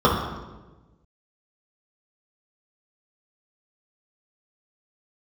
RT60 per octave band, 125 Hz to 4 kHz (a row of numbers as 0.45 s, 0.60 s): 1.7 s, 1.4 s, 1.3 s, 1.0 s, 0.95 s, 0.85 s